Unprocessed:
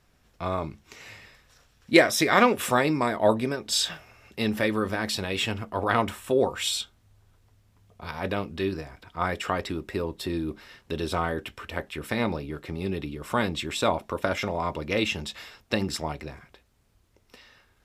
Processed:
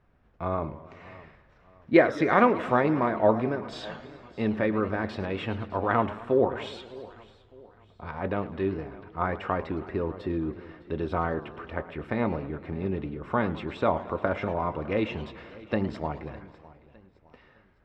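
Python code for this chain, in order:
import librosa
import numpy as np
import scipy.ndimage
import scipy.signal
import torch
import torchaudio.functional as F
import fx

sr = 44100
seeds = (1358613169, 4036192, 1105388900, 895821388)

y = scipy.signal.sosfilt(scipy.signal.butter(2, 1600.0, 'lowpass', fs=sr, output='sos'), x)
y = fx.echo_feedback(y, sr, ms=608, feedback_pct=38, wet_db=-20.0)
y = fx.echo_warbled(y, sr, ms=108, feedback_pct=65, rate_hz=2.8, cents=210, wet_db=-16.0)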